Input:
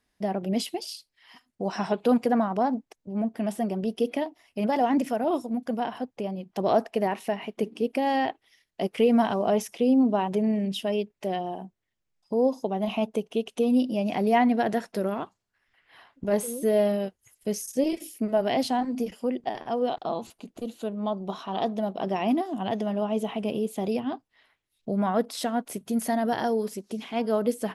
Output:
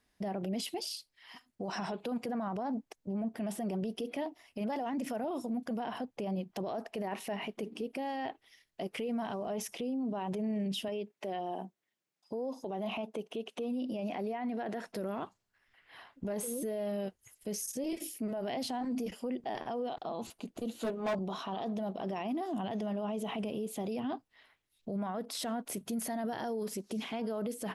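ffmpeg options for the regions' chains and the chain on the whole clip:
-filter_complex "[0:a]asettb=1/sr,asplit=3[a][b][c];[a]atrim=end=10.884[d];[b]atrim=start=10.88:end=14.87,asetpts=PTS-STARTPTS,afade=t=in:d=0.004:c=qsin,afade=t=out:st=3.986:d=0.004:c=qsin,highpass=220,acrossover=split=3600[e][f];[f]acompressor=threshold=-54dB:ratio=4:attack=1:release=60[g];[e][g]amix=inputs=2:normalize=0[h];[c]atrim=start=14.866[i];[d][h]acrossfade=d=0.004:c1=hsin:c2=qsin[j];[j][i]acrossfade=d=0.004:c1=qsin:c2=hsin,asettb=1/sr,asplit=3[k][l][m];[k]atrim=end=20.734[n];[l]atrim=start=20.73:end=21.19,asetpts=PTS-STARTPTS,afade=t=in:d=0.004:c=qsin,afade=t=out:st=0.456:d=0.004:c=qsin,asplit=2[o][p];[p]adelay=17,volume=-2dB[q];[o][q]amix=inputs=2:normalize=0,atrim=end_sample=20286,volume=27.5dB,asoftclip=hard,volume=-27.5dB[r];[m]atrim=start=21.186[s];[n][r]acrossfade=d=0.004:c1=hsin:c2=qsin[t];[t][s]acrossfade=d=0.004:c1=qsin:c2=hsin,acompressor=threshold=-26dB:ratio=4,alimiter=level_in=5dB:limit=-24dB:level=0:latency=1:release=22,volume=-5dB"

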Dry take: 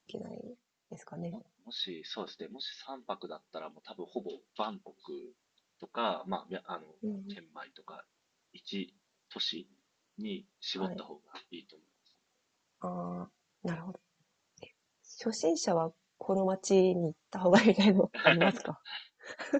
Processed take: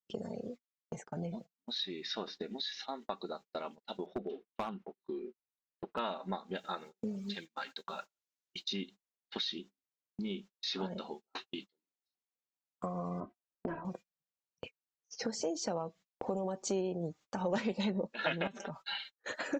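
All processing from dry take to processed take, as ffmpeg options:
-filter_complex "[0:a]asettb=1/sr,asplit=3[a][b][c];[a]atrim=end=4.064[d];[b]atrim=start=4.06:end=5.99,asetpts=PTS-STARTPTS,afade=t=in:d=0.004:c=qsin,afade=t=out:st=1.926:d=0.004:c=qsin,lowpass=2.2k,asoftclip=type=hard:threshold=-30.5dB[e];[c]atrim=start=5.986[f];[d][e]acrossfade=d=0.004:c1=hsin:c2=qsin[g];[g][f]acrossfade=d=0.004:c1=qsin:c2=hsin,asettb=1/sr,asplit=3[h][i][j];[h]atrim=end=6.554[k];[i]atrim=start=6.55:end=8.73,asetpts=PTS-STARTPTS,afade=t=in:d=0.004:c=qsin,afade=t=out:st=2.176:d=0.004:c=qsin,highshelf=f=3k:g=10,aecho=1:1:88|176:0.0708|0.0255,atrim=end_sample=96138[l];[j]atrim=start=8.726[m];[k][l]acrossfade=d=0.004:c1=hsin:c2=qsin[n];[n][m]acrossfade=d=0.004:c1=qsin:c2=hsin,asettb=1/sr,asplit=3[o][p][q];[o]atrim=end=13.204[r];[p]atrim=start=13.2:end=13.85,asetpts=PTS-STARTPTS,afade=t=in:d=0.004:c=qsin,afade=t=out:st=0.646:d=0.004:c=qsin,lowpass=1.3k,aecho=1:1:3.1:0.72,atrim=end_sample=28665[s];[q]atrim=start=13.846[t];[r][s]acrossfade=d=0.004:c1=hsin:c2=qsin[u];[u][t]acrossfade=d=0.004:c1=qsin:c2=hsin,asettb=1/sr,asplit=3[v][w][x];[v]atrim=end=18.474[y];[w]atrim=start=18.47:end=19.14,asetpts=PTS-STARTPTS,afade=t=in:d=0.004:c=qsin,afade=t=out:st=0.666:d=0.004:c=qsin,aecho=1:1:5.1:0.93,atrim=end_sample=29547,acompressor=threshold=-35dB:ratio=12:attack=3.2:release=140:knee=1:detection=peak[z];[x]atrim=start=19.136[aa];[y][z]acrossfade=d=0.004:c1=hsin:c2=qsin[ab];[ab][aa]acrossfade=d=0.004:c1=qsin:c2=hsin,agate=range=-34dB:threshold=-50dB:ratio=16:detection=peak,acompressor=threshold=-44dB:ratio=3,volume=7dB"

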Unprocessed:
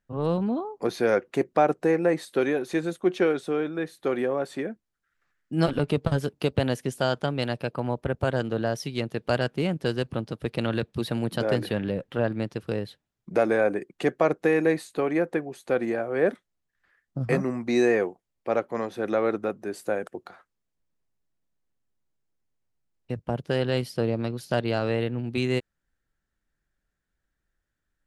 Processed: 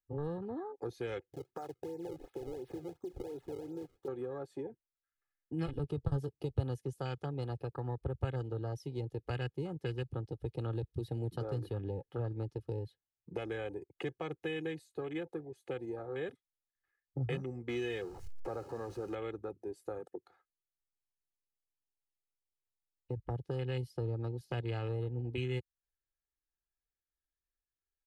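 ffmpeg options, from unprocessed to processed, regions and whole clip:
-filter_complex "[0:a]asettb=1/sr,asplit=3[a][b][c];[a]atrim=end=1.334[d];[b]atrim=start=1.33:end=4.08,asetpts=PTS-STARTPTS,afade=t=in:d=0.004:c=qsin,afade=t=out:st=2.746:d=0.004:c=qsin,equalizer=f=120:w=2.6:g=6,acompressor=threshold=-34dB:ratio=4:attack=3.2:release=140:knee=1:detection=peak,acrusher=samples=29:mix=1:aa=0.000001:lfo=1:lforange=46.4:lforate=2.8[e];[c]atrim=start=4.076[f];[d][e]acrossfade=d=0.004:c1=hsin:c2=qsin[g];[g][f]acrossfade=d=0.004:c1=qsin:c2=hsin,asettb=1/sr,asplit=3[h][i][j];[h]atrim=end=17.694[k];[i]atrim=start=17.69:end=19.15,asetpts=PTS-STARTPTS,afade=t=in:d=0.004:c=qsin,afade=t=out:st=1.456:d=0.004:c=qsin,aeval=exprs='val(0)+0.5*0.0282*sgn(val(0))':c=same,bandreject=f=3.5k:w=5,acrossover=split=9200[l][m];[m]acompressor=threshold=-52dB:ratio=4:attack=1:release=60[n];[l][n]amix=inputs=2:normalize=0[o];[j]atrim=start=19.146[p];[k][o]acrossfade=d=0.004:c1=hsin:c2=qsin[q];[q][p]acrossfade=d=0.004:c1=qsin:c2=hsin,afwtdn=0.0224,aecho=1:1:2.4:0.71,acrossover=split=170|3000[r][s][t];[s]acompressor=threshold=-35dB:ratio=6[u];[r][u][t]amix=inputs=3:normalize=0,volume=-4.5dB"

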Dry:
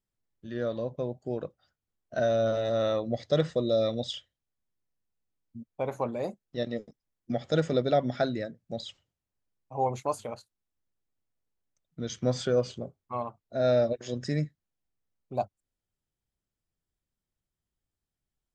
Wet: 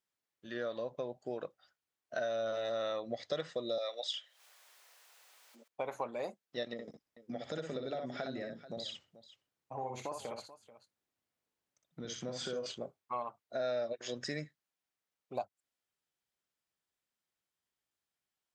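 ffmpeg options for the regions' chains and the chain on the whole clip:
-filter_complex "[0:a]asettb=1/sr,asplit=3[a][b][c];[a]atrim=end=3.784[d];[b]atrim=start=3.78:end=5.68,asetpts=PTS-STARTPTS,afade=t=in:d=0.004:c=qsin,afade=t=out:st=1.896:d=0.004:c=qsin,highpass=f=530:w=0.5412,highpass=f=530:w=1.3066,acompressor=mode=upward:threshold=-38dB:ratio=2.5:attack=3.2:release=140:knee=2.83:detection=peak[e];[c]atrim=start=5.676[f];[d][e]acrossfade=d=0.004:c1=hsin:c2=qsin[g];[g][f]acrossfade=d=0.004:c1=qsin:c2=hsin,asettb=1/sr,asplit=3[h][i][j];[h]atrim=end=6.734[k];[i]atrim=start=6.73:end=12.66,asetpts=PTS-STARTPTS,afade=t=in:d=0.004:c=qsin,afade=t=out:st=5.926:d=0.004:c=qsin,acompressor=threshold=-42dB:ratio=2.5:attack=3.2:release=140:knee=1:detection=peak,lowshelf=f=410:g=10,aecho=1:1:61|435:0.562|0.141,atrim=end_sample=261513[l];[j]atrim=start=12.656[m];[k][l]acrossfade=d=0.004:c1=hsin:c2=qsin[n];[n][m]acrossfade=d=0.004:c1=qsin:c2=hsin,highpass=f=1.1k:p=1,highshelf=f=5.2k:g=-7,acompressor=threshold=-41dB:ratio=3,volume=5.5dB"

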